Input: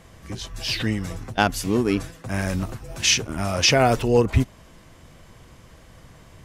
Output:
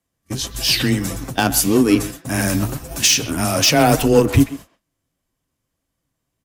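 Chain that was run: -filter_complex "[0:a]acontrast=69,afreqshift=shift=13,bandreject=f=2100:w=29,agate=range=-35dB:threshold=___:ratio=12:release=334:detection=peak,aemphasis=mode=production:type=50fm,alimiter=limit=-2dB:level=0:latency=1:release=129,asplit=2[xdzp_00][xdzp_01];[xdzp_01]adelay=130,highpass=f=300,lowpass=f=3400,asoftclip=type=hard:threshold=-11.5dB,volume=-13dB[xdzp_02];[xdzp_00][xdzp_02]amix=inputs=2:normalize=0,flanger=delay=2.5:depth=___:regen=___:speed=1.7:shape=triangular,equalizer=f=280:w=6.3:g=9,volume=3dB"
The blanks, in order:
-29dB, 7.2, 68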